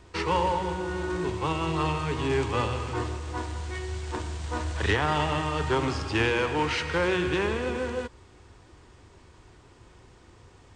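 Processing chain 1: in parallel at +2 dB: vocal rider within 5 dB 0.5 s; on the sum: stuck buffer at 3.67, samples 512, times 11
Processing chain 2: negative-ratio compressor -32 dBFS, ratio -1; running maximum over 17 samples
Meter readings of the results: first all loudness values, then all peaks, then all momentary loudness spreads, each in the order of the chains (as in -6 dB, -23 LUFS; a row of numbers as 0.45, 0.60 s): -21.5, -33.5 LUFS; -5.5, -18.0 dBFS; 5, 20 LU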